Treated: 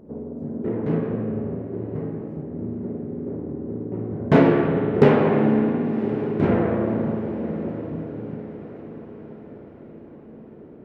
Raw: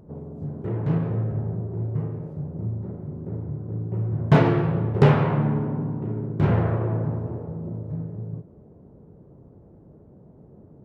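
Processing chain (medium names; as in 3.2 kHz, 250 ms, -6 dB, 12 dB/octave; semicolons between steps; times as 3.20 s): graphic EQ 125/250/500/2000 Hz -7/+11/+6/+5 dB; on a send: echo that smears into a reverb 1079 ms, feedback 52%, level -15.5 dB; on the sum: spring tank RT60 2.8 s, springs 50 ms, chirp 45 ms, DRR 5 dB; trim -3 dB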